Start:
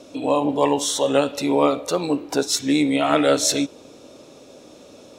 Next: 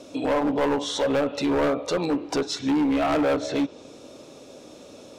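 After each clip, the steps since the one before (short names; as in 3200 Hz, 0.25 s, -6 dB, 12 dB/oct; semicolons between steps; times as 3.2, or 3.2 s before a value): treble ducked by the level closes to 1300 Hz, closed at -14 dBFS; overloaded stage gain 19 dB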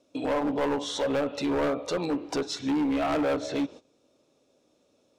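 gate -38 dBFS, range -18 dB; gain -4 dB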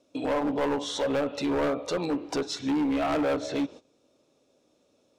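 nothing audible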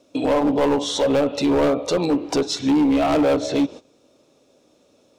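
dynamic EQ 1600 Hz, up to -6 dB, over -46 dBFS, Q 1.2; gain +9 dB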